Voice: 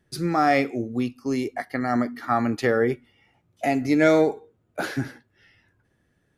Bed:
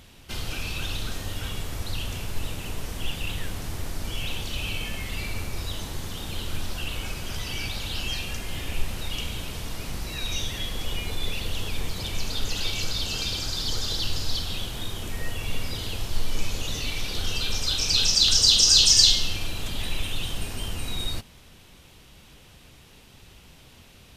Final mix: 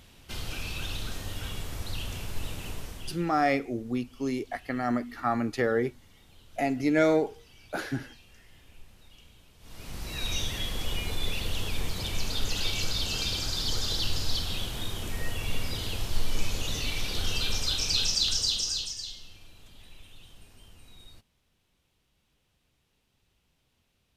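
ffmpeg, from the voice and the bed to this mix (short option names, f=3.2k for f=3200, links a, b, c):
-filter_complex "[0:a]adelay=2950,volume=-5dB[a];[1:a]volume=18.5dB,afade=t=out:st=2.69:d=0.61:silence=0.1,afade=t=in:st=9.59:d=0.66:silence=0.0749894,afade=t=out:st=17.46:d=1.5:silence=0.0944061[b];[a][b]amix=inputs=2:normalize=0"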